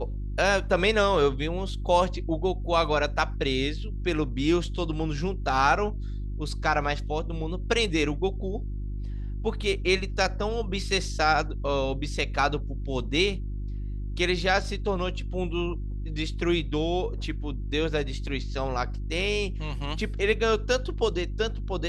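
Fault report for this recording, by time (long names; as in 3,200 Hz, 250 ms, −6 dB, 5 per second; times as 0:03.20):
mains hum 50 Hz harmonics 7 −32 dBFS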